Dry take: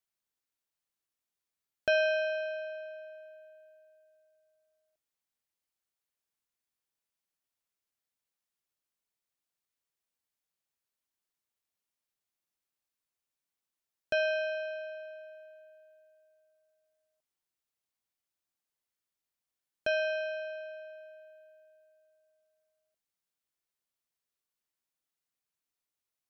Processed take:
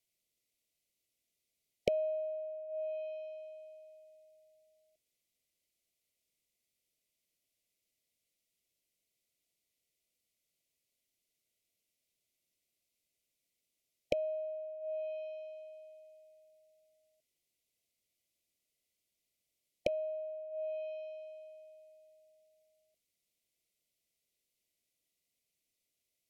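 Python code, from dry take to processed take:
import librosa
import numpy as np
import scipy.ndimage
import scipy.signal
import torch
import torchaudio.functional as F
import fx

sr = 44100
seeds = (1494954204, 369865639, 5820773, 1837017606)

y = fx.env_lowpass_down(x, sr, base_hz=330.0, full_db=-35.0)
y = fx.brickwall_bandstop(y, sr, low_hz=720.0, high_hz=1900.0)
y = F.gain(torch.from_numpy(y), 6.0).numpy()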